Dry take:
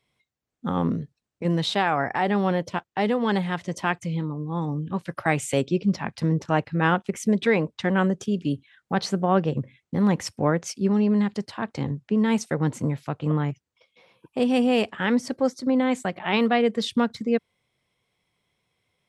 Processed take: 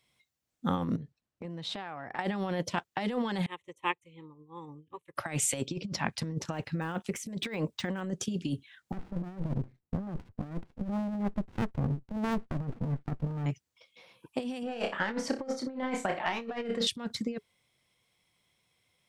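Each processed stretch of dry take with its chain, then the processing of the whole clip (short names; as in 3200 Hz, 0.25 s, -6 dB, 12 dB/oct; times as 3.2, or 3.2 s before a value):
0.96–2.19 LPF 2000 Hz 6 dB/oct + compressor 10:1, threshold -34 dBFS
3.46–5.16 fixed phaser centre 1000 Hz, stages 8 + upward expander 2.5:1, over -42 dBFS
6.45–8.01 de-esser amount 100% + high shelf 7700 Hz +4.5 dB
8.92–13.46 inverse Chebyshev low-pass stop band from 5700 Hz, stop band 70 dB + running maximum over 65 samples
14.63–16.87 overdrive pedal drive 12 dB, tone 1000 Hz, clips at -9 dBFS + flutter echo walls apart 5.2 m, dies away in 0.27 s
whole clip: high shelf 2900 Hz +8 dB; notch 420 Hz, Q 12; negative-ratio compressor -25 dBFS, ratio -0.5; gain -6 dB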